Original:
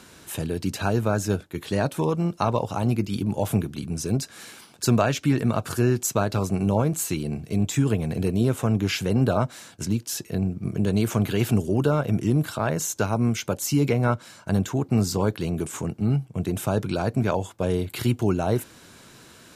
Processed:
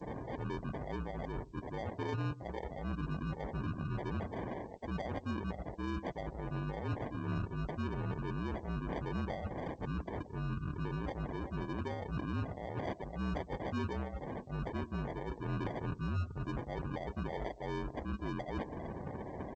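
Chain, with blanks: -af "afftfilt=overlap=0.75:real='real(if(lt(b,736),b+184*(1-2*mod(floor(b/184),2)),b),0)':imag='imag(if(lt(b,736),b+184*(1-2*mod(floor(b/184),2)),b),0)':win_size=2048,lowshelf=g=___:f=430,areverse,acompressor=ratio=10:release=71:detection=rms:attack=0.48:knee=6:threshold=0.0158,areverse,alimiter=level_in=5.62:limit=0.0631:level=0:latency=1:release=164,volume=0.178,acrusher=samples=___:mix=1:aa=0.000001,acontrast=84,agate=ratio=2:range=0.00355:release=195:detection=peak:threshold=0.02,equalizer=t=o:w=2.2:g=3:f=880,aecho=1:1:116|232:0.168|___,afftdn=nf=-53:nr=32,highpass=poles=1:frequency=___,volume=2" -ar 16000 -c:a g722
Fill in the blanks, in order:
11.5, 33, 0.0252, 68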